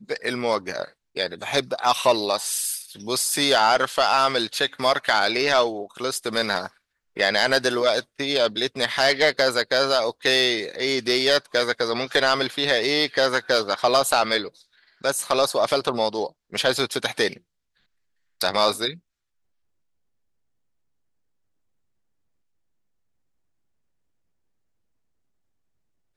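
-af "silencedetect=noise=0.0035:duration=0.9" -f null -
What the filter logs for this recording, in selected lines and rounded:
silence_start: 17.39
silence_end: 18.40 | silence_duration: 1.02
silence_start: 18.99
silence_end: 26.16 | silence_duration: 7.17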